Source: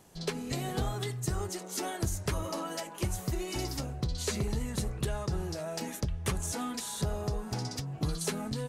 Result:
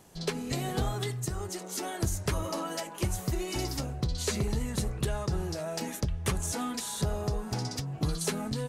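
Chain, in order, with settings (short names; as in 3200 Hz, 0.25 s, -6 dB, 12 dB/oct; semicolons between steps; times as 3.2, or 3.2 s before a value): 1.24–1.97 compressor 2:1, threshold -35 dBFS, peak gain reduction 5 dB; gain +2 dB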